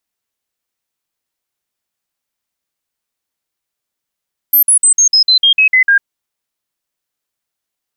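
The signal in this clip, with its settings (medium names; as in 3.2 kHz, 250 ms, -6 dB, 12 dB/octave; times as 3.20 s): stepped sine 12.9 kHz down, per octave 3, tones 10, 0.10 s, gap 0.05 s -5.5 dBFS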